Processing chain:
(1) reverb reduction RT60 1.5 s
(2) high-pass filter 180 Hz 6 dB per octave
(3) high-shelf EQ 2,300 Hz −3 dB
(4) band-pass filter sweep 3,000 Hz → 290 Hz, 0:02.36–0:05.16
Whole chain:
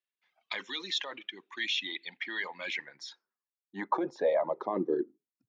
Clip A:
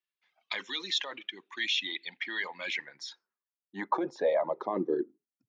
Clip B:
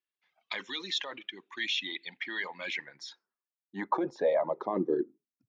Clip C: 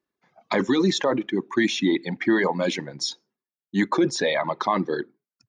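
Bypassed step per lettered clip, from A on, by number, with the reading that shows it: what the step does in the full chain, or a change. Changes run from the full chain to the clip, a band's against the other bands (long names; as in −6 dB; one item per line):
3, 4 kHz band +2.0 dB
2, 125 Hz band +3.0 dB
4, 125 Hz band +12.5 dB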